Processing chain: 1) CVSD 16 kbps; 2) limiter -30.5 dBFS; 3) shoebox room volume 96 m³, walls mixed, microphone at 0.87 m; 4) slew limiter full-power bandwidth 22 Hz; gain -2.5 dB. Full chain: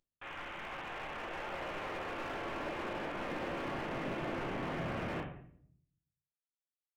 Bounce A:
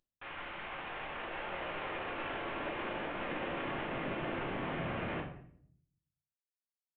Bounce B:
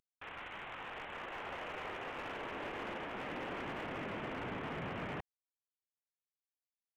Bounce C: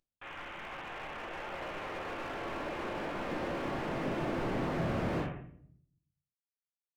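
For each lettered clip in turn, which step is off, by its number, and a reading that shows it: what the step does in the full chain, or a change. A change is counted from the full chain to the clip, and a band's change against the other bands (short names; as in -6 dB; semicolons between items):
4, distortion -11 dB; 3, crest factor change -3.5 dB; 2, mean gain reduction 2.5 dB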